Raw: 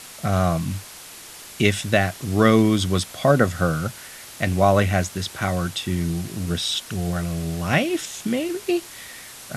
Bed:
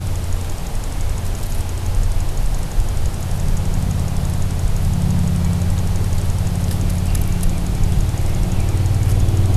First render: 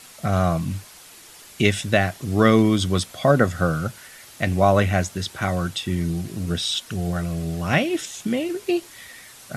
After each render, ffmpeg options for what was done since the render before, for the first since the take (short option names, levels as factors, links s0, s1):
-af "afftdn=nr=6:nf=-41"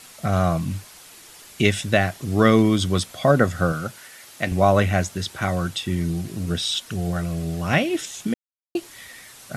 -filter_complex "[0:a]asettb=1/sr,asplit=3[s0][s1][s2];[s0]atrim=end=3.724[s3];[s1]atrim=start=3.72:end=4.52,asetpts=PTS-STARTPTS,afade=t=in:d=0.004:c=qsin,afade=t=out:st=0.796:d=0.004:c=qsin,highpass=f=200:p=1[s4];[s2]atrim=start=4.516[s5];[s3][s4]acrossfade=d=0.004:c1=hsin:c2=qsin[s6];[s6][s5]acrossfade=d=0.004:c1=qsin:c2=hsin,asplit=3[s7][s8][s9];[s7]atrim=end=8.34,asetpts=PTS-STARTPTS,afade=t=out:st=8.336:d=0.004:c=hsin[s10];[s8]atrim=start=8.34:end=8.75,asetpts=PTS-STARTPTS,volume=0[s11];[s9]atrim=start=8.75,asetpts=PTS-STARTPTS,afade=t=in:d=0.004:c=hsin[s12];[s10][s11][s12]concat=n=3:v=0:a=1"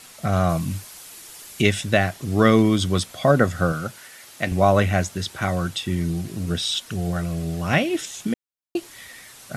-filter_complex "[0:a]asettb=1/sr,asplit=3[s0][s1][s2];[s0]atrim=end=0.494[s3];[s1]atrim=start=0.49:end=1.62,asetpts=PTS-STARTPTS,afade=t=in:d=0.004:c=qsin,afade=t=out:st=1.126:d=0.004:c=qsin,highshelf=f=6300:g=7[s4];[s2]atrim=start=1.616[s5];[s3][s4]acrossfade=d=0.004:c1=hsin:c2=qsin[s6];[s6][s5]acrossfade=d=0.004:c1=qsin:c2=hsin"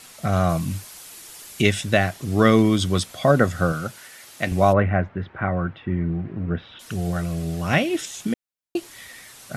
-filter_complex "[0:a]asplit=3[s0][s1][s2];[s0]afade=t=out:st=4.72:d=0.02[s3];[s1]lowpass=f=2000:w=0.5412,lowpass=f=2000:w=1.3066,afade=t=in:st=4.72:d=0.02,afade=t=out:st=6.79:d=0.02[s4];[s2]afade=t=in:st=6.79:d=0.02[s5];[s3][s4][s5]amix=inputs=3:normalize=0"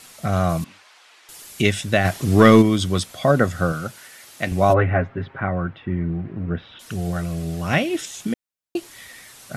-filter_complex "[0:a]asettb=1/sr,asplit=3[s0][s1][s2];[s0]atrim=end=0.644[s3];[s1]atrim=start=0.64:end=1.29,asetpts=PTS-STARTPTS,afade=t=in:d=0.004:c=qsin,afade=t=out:st=0.646:d=0.004:c=qsin,highpass=710,lowpass=3100[s4];[s2]atrim=start=1.286[s5];[s3][s4]acrossfade=d=0.004:c1=hsin:c2=qsin[s6];[s6][s5]acrossfade=d=0.004:c1=qsin:c2=hsin,asplit=3[s7][s8][s9];[s7]afade=t=out:st=2.04:d=0.02[s10];[s8]acontrast=75,afade=t=in:st=2.04:d=0.02,afade=t=out:st=2.61:d=0.02[s11];[s9]afade=t=in:st=2.61:d=0.02[s12];[s10][s11][s12]amix=inputs=3:normalize=0,asettb=1/sr,asplit=3[s13][s14][s15];[s13]atrim=end=4.694[s16];[s14]atrim=start=4.69:end=5.4,asetpts=PTS-STARTPTS,afade=t=in:d=0.004:c=qsin,afade=t=out:st=0.706:d=0.004:c=qsin,aecho=1:1:7.4:0.89,atrim=end_sample=31311[s17];[s15]atrim=start=5.396[s18];[s16][s17]acrossfade=d=0.004:c1=hsin:c2=qsin[s19];[s19][s18]acrossfade=d=0.004:c1=qsin:c2=hsin"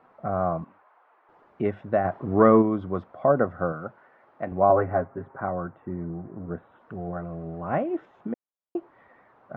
-af "lowpass=f=1100:w=0.5412,lowpass=f=1100:w=1.3066,aemphasis=mode=production:type=riaa"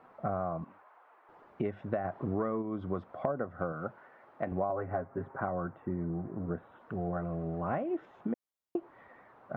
-af "acompressor=threshold=0.0355:ratio=12"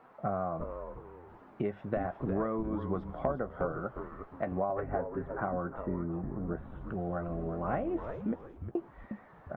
-filter_complex "[0:a]asplit=2[s0][s1];[s1]adelay=15,volume=0.266[s2];[s0][s2]amix=inputs=2:normalize=0,asplit=5[s3][s4][s5][s6][s7];[s4]adelay=357,afreqshift=-130,volume=0.422[s8];[s5]adelay=714,afreqshift=-260,volume=0.14[s9];[s6]adelay=1071,afreqshift=-390,volume=0.0457[s10];[s7]adelay=1428,afreqshift=-520,volume=0.0151[s11];[s3][s8][s9][s10][s11]amix=inputs=5:normalize=0"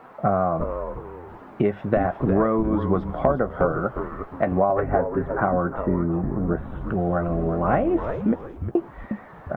-af "volume=3.98,alimiter=limit=0.708:level=0:latency=1"